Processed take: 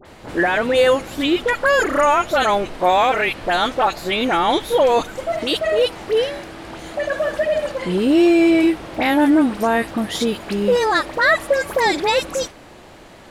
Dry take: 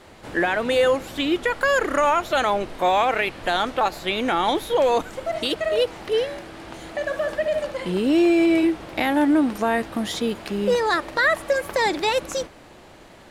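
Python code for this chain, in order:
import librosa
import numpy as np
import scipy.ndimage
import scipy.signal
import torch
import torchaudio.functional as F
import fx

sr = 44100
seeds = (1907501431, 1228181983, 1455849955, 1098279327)

y = fx.dispersion(x, sr, late='highs', ms=54.0, hz=1800.0)
y = y * librosa.db_to_amplitude(4.0)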